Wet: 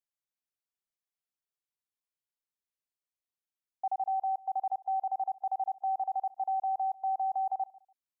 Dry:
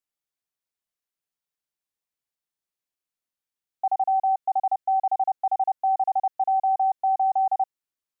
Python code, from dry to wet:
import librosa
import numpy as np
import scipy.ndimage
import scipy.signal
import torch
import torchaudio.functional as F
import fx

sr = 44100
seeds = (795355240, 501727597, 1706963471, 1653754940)

y = fx.echo_feedback(x, sr, ms=145, feedback_pct=22, wet_db=-21.5)
y = y * librosa.db_to_amplitude(-8.5)